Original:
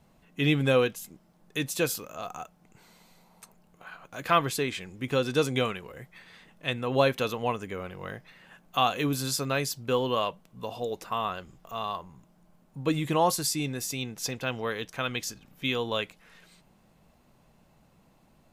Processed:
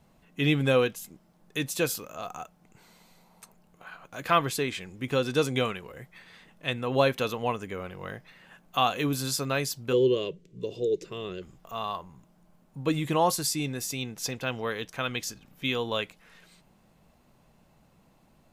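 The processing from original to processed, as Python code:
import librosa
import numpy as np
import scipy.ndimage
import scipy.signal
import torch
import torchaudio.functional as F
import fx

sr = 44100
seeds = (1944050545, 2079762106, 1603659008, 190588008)

y = fx.curve_eq(x, sr, hz=(110.0, 160.0, 230.0, 390.0, 780.0, 1300.0, 2000.0, 7300.0, 11000.0), db=(0, 8, -4, 14, -21, -15, -4, -1, -16), at=(9.92, 11.41), fade=0.02)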